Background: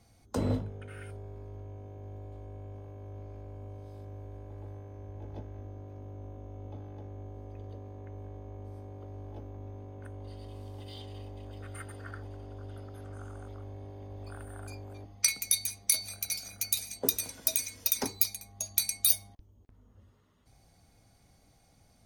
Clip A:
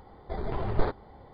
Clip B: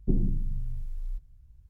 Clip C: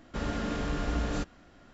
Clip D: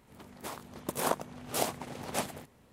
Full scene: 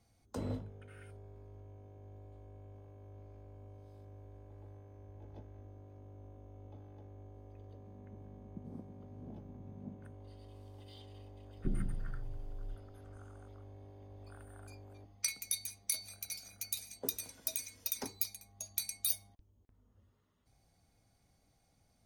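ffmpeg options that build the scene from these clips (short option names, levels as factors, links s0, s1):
-filter_complex "[0:a]volume=0.355[s0];[4:a]lowpass=f=210:t=q:w=2.5,atrim=end=2.72,asetpts=PTS-STARTPTS,volume=0.237,afade=t=in:d=0.004:c=hsin,afade=t=out:st=2.716:d=0.004:c=hsin,adelay=7680[s1];[2:a]atrim=end=1.69,asetpts=PTS-STARTPTS,volume=0.335,afade=t=in:d=0.004:c=hsin,afade=t=out:st=1.686:d=0.004:c=hsin,adelay=11570[s2];[s0][s1][s2]amix=inputs=3:normalize=0"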